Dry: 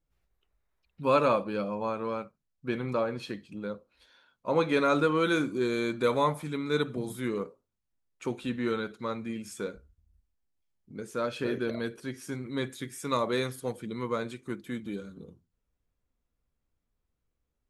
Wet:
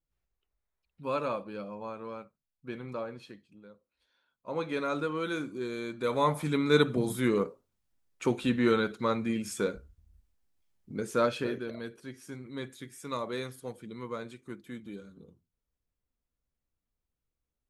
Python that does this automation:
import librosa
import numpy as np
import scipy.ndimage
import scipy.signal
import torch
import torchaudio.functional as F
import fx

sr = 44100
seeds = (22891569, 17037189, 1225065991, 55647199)

y = fx.gain(x, sr, db=fx.line((3.09, -8.0), (3.74, -18.0), (4.64, -7.0), (5.96, -7.0), (6.46, 5.0), (11.24, 5.0), (11.64, -6.5)))